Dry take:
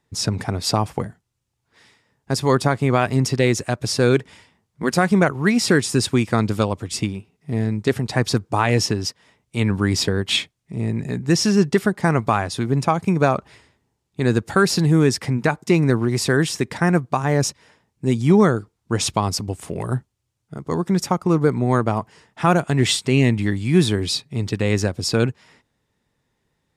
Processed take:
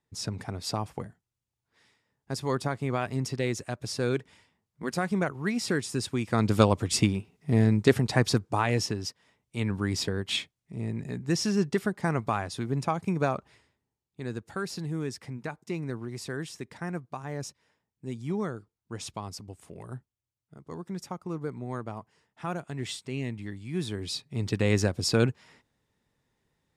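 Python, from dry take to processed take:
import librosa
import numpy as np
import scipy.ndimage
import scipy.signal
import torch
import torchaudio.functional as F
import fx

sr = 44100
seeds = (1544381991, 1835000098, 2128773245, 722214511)

y = fx.gain(x, sr, db=fx.line((6.18, -11.5), (6.61, 0.0), (7.76, 0.0), (8.87, -9.5), (13.24, -9.5), (14.32, -17.0), (23.71, -17.0), (24.56, -4.5)))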